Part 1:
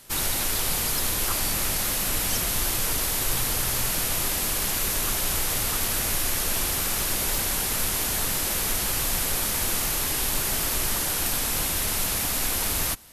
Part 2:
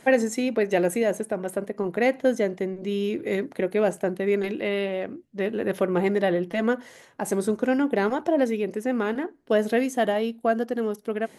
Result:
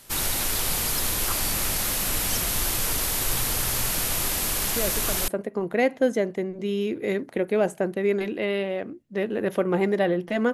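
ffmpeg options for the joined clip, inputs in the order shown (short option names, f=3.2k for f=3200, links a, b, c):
-filter_complex "[1:a]asplit=2[a][b];[0:a]apad=whole_dur=10.53,atrim=end=10.53,atrim=end=5.282[c];[b]atrim=start=1.508:end=6.76[d];[a]atrim=start=0.99:end=1.51,asetpts=PTS-STARTPTS,volume=-6.5dB,afade=t=in:d=0.004:c=hsin,afade=t=out:st=0.516:d=0.004:c=hsin,adelay=4760[e];[c][d]acrossfade=d=0.004:c1=hsin:c2=hsin[f];[f][e]amix=inputs=2:normalize=0"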